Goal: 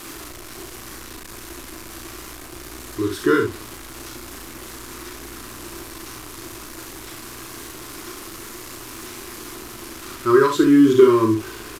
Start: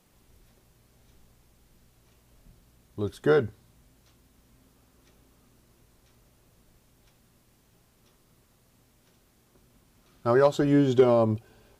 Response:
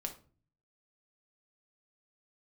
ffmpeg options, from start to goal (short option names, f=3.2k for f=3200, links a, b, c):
-filter_complex "[0:a]aeval=exprs='val(0)+0.5*0.015*sgn(val(0))':c=same,firequalizer=gain_entry='entry(110,0);entry(180,-7);entry(330,14);entry(700,-26);entry(1000,9);entry(3100,4);entry(4800,6)':delay=0.05:min_phase=1,acrusher=bits=7:dc=4:mix=0:aa=0.000001,asplit=2[a][b];[b]aecho=0:1:36|67:0.531|0.447[c];[a][c]amix=inputs=2:normalize=0,aresample=32000,aresample=44100,volume=-1dB"